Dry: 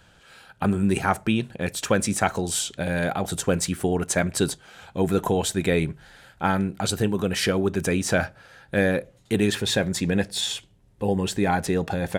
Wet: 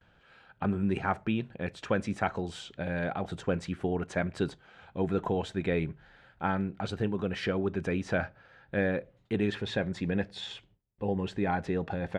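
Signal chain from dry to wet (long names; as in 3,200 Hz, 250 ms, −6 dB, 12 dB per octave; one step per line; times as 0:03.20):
low-pass filter 2,800 Hz 12 dB per octave
noise gate with hold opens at −49 dBFS
level −7 dB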